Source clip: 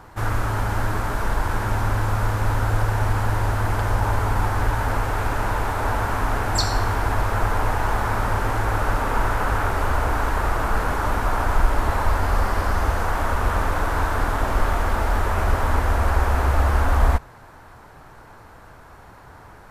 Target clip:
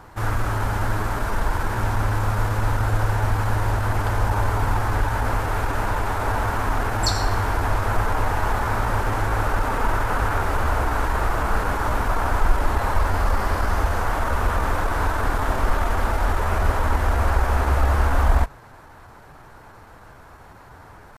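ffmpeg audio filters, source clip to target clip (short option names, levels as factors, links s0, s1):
-af "atempo=0.93"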